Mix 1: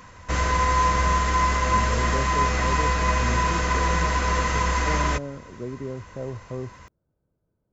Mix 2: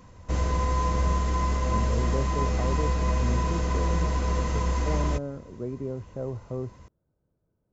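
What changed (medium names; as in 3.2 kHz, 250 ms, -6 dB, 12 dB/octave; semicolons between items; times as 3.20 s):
background: add peaking EQ 1.6 kHz -12.5 dB 1.9 oct; master: add treble shelf 3.4 kHz -8.5 dB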